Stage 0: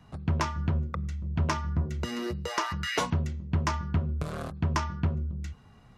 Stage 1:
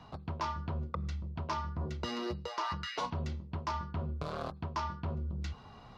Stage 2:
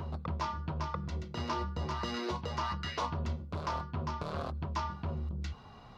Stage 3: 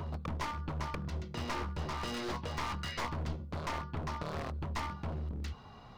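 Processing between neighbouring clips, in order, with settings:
EQ curve 180 Hz 0 dB, 1000 Hz +10 dB, 1800 Hz +1 dB, 4500 Hz +9 dB, 8500 Hz -8 dB; reverse; compressor 6:1, threshold -34 dBFS, peak gain reduction 17 dB; reverse
reverse echo 0.69 s -4 dB
one-sided fold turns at -35 dBFS

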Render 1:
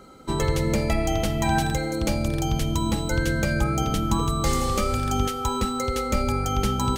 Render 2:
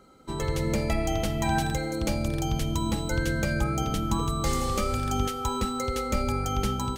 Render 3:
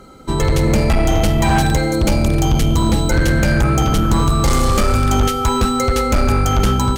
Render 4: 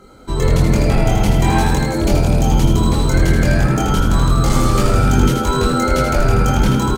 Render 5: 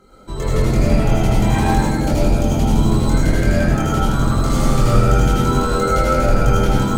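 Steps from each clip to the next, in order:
AGC gain up to 5 dB; gain -8 dB
low shelf 110 Hz +6 dB; in parallel at -12 dB: sine folder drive 11 dB, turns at -10.5 dBFS; on the sum: gain +5.5 dB
chorus voices 6, 0.35 Hz, delay 23 ms, depth 2.8 ms; frequency-shifting echo 80 ms, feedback 46%, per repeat +86 Hz, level -5.5 dB
digital reverb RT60 0.84 s, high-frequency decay 0.25×, pre-delay 55 ms, DRR -3.5 dB; gain -7 dB

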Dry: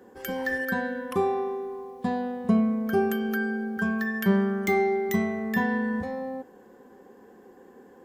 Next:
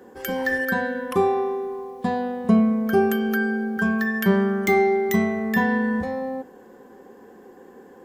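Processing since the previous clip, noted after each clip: notches 50/100/150/200/250 Hz; gain +5 dB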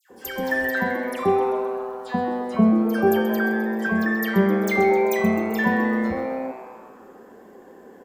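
dispersion lows, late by 0.101 s, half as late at 1800 Hz; on a send: frequency-shifting echo 0.13 s, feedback 60%, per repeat +120 Hz, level -12 dB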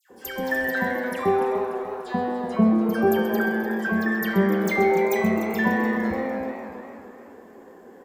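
warbling echo 0.295 s, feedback 52%, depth 83 cents, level -11 dB; gain -1.5 dB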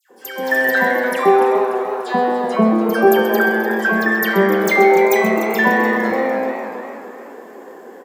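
HPF 320 Hz 12 dB/oct; AGC gain up to 9 dB; gain +2 dB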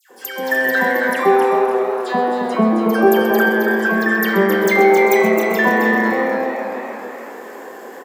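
echo 0.268 s -6.5 dB; mismatched tape noise reduction encoder only; gain -1 dB

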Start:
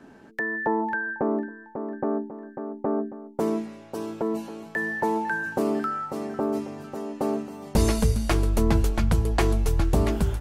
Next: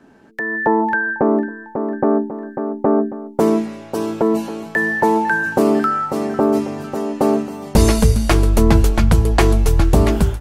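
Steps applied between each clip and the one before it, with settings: AGC gain up to 11.5 dB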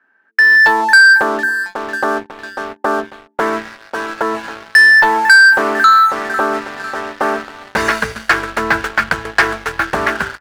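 band-pass 1600 Hz, Q 4.5; sample leveller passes 3; gain +8.5 dB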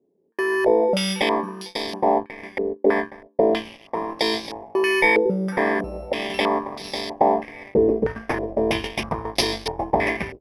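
FFT order left unsorted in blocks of 32 samples; stepped low-pass 3.1 Hz 430–4100 Hz; gain -2 dB

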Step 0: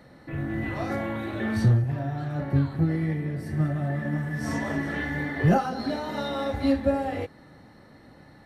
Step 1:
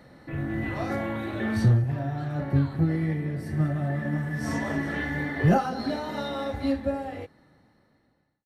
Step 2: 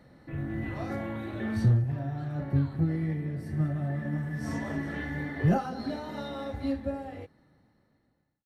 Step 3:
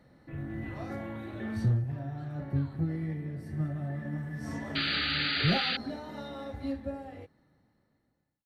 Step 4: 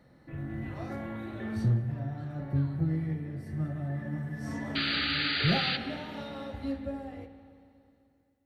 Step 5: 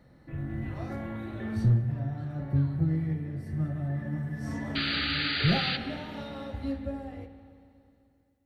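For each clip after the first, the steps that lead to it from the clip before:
ending faded out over 2.59 s
low shelf 310 Hz +5 dB; gain -7 dB
painted sound noise, 4.75–5.77, 1200–4800 Hz -27 dBFS; gain -4 dB
spring tank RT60 2.5 s, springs 44/50/57 ms, chirp 70 ms, DRR 9.5 dB
low shelf 100 Hz +8 dB

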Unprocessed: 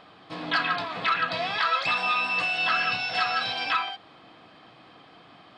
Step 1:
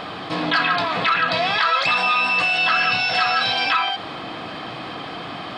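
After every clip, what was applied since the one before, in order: fast leveller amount 50%; gain +4.5 dB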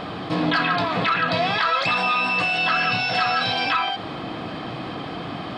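low shelf 500 Hz +9.5 dB; gain -3.5 dB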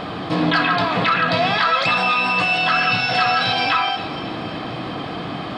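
split-band echo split 1900 Hz, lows 0.107 s, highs 0.278 s, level -12.5 dB; gain +3 dB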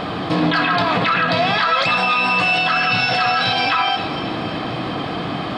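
maximiser +11 dB; gain -7.5 dB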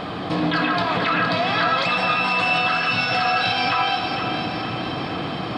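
echo with dull and thin repeats by turns 0.233 s, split 890 Hz, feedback 77%, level -5 dB; gain -4.5 dB

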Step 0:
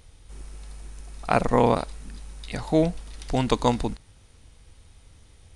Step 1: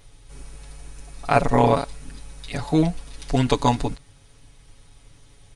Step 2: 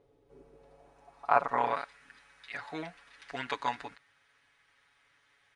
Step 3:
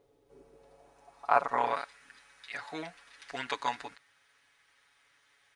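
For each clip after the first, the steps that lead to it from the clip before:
comb 7.1 ms, depth 96%
band-pass sweep 430 Hz -> 1700 Hz, 0.51–1.78
tone controls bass -4 dB, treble +6 dB

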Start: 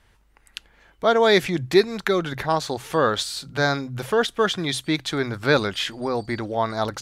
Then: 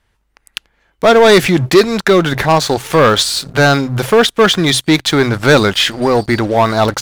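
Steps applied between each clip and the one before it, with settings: sample leveller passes 3; gain +2.5 dB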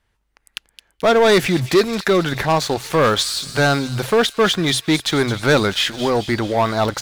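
thin delay 0.217 s, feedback 63%, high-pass 3100 Hz, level -10 dB; gain -6 dB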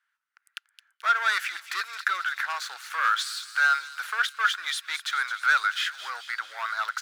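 ladder high-pass 1300 Hz, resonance 70%

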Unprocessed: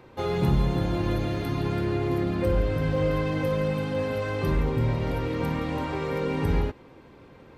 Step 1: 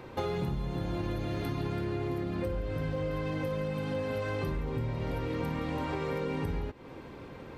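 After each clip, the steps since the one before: compressor 12:1, threshold -34 dBFS, peak gain reduction 17 dB; gain +4.5 dB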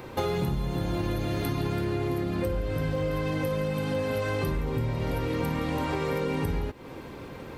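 high shelf 7500 Hz +11 dB; gain +4.5 dB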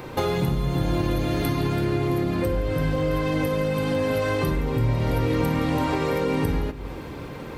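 shoebox room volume 1300 m³, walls mixed, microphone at 0.44 m; gain +4.5 dB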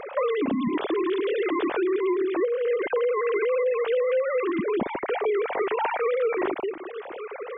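sine-wave speech; compressor, threshold -24 dBFS, peak gain reduction 9.5 dB; gain +2.5 dB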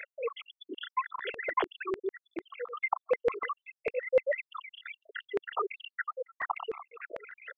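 random spectral dropouts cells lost 81%; LFO high-pass saw down 6.7 Hz 560–2000 Hz

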